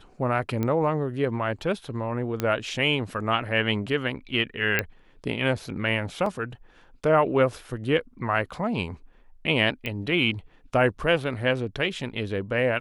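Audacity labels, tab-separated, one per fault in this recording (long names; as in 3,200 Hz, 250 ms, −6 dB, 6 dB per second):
0.630000	0.630000	click −15 dBFS
2.400000	2.400000	click −12 dBFS
4.790000	4.790000	click −8 dBFS
6.260000	6.260000	drop-out 3 ms
9.860000	9.860000	click −17 dBFS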